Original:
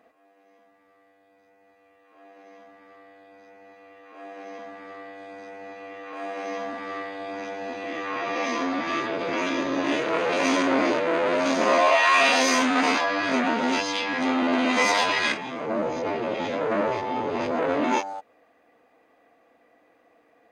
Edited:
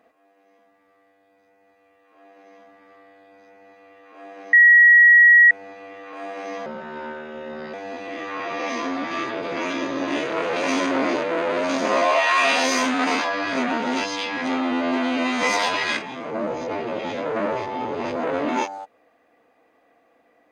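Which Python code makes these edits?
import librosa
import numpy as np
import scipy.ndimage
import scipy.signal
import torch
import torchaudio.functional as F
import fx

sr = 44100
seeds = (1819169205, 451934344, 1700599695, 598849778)

y = fx.edit(x, sr, fx.bleep(start_s=4.53, length_s=0.98, hz=1910.0, db=-8.0),
    fx.speed_span(start_s=6.66, length_s=0.84, speed=0.78),
    fx.stretch_span(start_s=14.37, length_s=0.41, factor=2.0), tone=tone)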